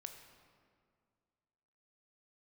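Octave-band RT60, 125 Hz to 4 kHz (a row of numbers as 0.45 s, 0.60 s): 2.3 s, 2.2 s, 2.2 s, 2.0 s, 1.7 s, 1.3 s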